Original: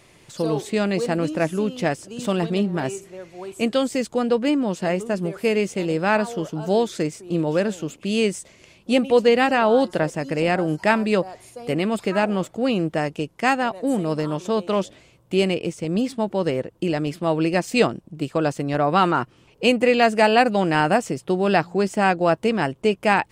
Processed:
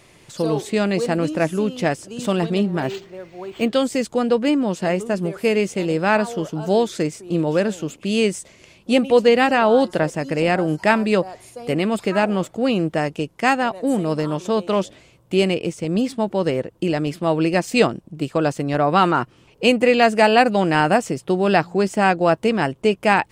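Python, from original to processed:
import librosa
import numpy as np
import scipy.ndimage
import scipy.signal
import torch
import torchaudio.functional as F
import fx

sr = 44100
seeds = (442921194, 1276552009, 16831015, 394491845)

y = fx.resample_linear(x, sr, factor=4, at=(2.82, 3.73))
y = y * librosa.db_to_amplitude(2.0)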